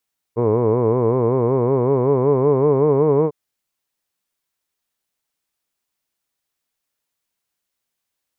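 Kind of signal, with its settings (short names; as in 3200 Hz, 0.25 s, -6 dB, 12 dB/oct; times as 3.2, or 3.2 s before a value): formant-synthesis vowel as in hood, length 2.95 s, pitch 112 Hz, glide +5 st, vibrato depth 1.3 st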